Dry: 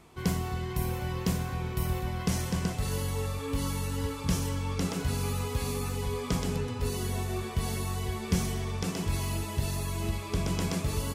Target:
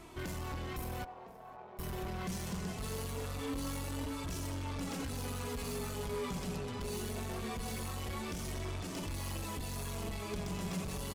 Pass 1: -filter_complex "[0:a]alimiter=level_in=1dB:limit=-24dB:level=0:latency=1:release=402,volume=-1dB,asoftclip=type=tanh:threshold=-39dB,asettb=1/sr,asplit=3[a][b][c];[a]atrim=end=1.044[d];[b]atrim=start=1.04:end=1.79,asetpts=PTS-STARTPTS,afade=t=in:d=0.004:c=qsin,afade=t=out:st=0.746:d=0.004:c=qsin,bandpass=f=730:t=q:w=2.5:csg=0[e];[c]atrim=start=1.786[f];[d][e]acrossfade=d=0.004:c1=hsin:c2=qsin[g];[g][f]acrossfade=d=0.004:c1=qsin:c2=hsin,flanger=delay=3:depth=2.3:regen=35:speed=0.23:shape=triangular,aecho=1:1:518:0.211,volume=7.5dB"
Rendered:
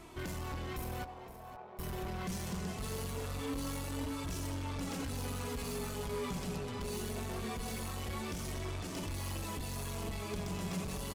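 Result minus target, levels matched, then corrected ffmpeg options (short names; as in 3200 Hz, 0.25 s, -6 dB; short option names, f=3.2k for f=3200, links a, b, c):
echo-to-direct +10.5 dB
-filter_complex "[0:a]alimiter=level_in=1dB:limit=-24dB:level=0:latency=1:release=402,volume=-1dB,asoftclip=type=tanh:threshold=-39dB,asettb=1/sr,asplit=3[a][b][c];[a]atrim=end=1.044[d];[b]atrim=start=1.04:end=1.79,asetpts=PTS-STARTPTS,afade=t=in:d=0.004:c=qsin,afade=t=out:st=0.746:d=0.004:c=qsin,bandpass=f=730:t=q:w=2.5:csg=0[e];[c]atrim=start=1.786[f];[d][e]acrossfade=d=0.004:c1=hsin:c2=qsin[g];[g][f]acrossfade=d=0.004:c1=qsin:c2=hsin,flanger=delay=3:depth=2.3:regen=35:speed=0.23:shape=triangular,aecho=1:1:518:0.0631,volume=7.5dB"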